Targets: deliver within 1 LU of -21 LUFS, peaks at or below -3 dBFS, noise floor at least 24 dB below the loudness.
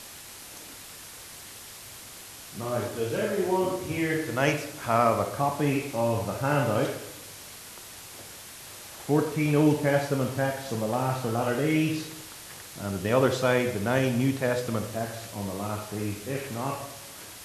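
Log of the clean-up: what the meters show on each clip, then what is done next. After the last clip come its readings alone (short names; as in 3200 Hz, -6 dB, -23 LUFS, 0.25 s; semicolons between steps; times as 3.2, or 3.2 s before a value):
noise floor -45 dBFS; noise floor target -52 dBFS; loudness -27.5 LUFS; peak -8.0 dBFS; loudness target -21.0 LUFS
-> denoiser 7 dB, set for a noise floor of -45 dBFS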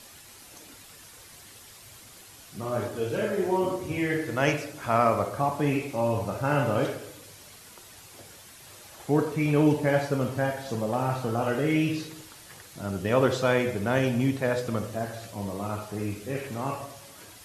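noise floor -49 dBFS; noise floor target -52 dBFS
-> denoiser 6 dB, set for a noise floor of -49 dBFS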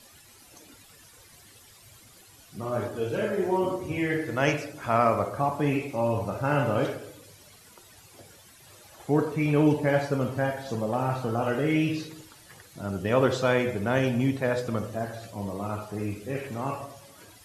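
noise floor -54 dBFS; loudness -27.5 LUFS; peak -8.0 dBFS; loudness target -21.0 LUFS
-> gain +6.5 dB; limiter -3 dBFS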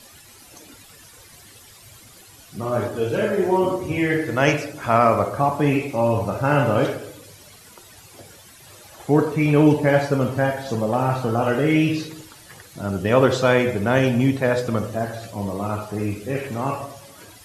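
loudness -21.0 LUFS; peak -3.0 dBFS; noise floor -47 dBFS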